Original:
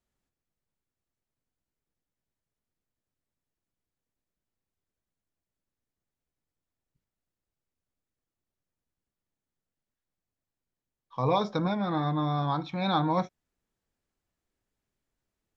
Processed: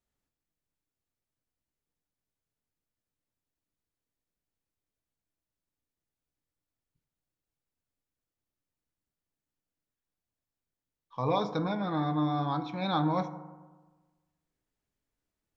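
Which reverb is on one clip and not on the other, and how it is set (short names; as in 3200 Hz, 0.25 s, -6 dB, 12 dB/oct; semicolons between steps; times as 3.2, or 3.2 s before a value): FDN reverb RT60 1.3 s, low-frequency decay 1.1×, high-frequency decay 0.35×, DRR 10 dB; gain -3 dB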